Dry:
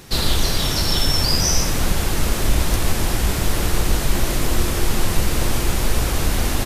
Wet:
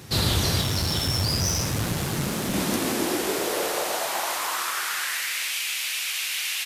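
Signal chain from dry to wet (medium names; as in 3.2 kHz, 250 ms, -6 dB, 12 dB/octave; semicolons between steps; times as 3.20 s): high-pass sweep 97 Hz -> 2.5 kHz, 1.72–5.57 s; 0.61–2.54 s: valve stage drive 16 dB, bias 0.5; trim -2.5 dB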